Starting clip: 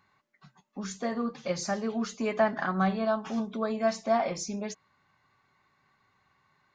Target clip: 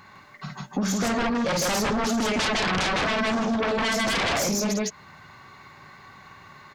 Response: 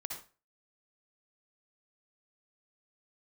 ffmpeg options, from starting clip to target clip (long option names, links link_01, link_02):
-af "aecho=1:1:52.48|157.4:0.562|0.891,aeval=exprs='0.237*sin(PI/2*6.31*val(0)/0.237)':channel_layout=same,acompressor=threshold=-22dB:ratio=6,volume=-1.5dB"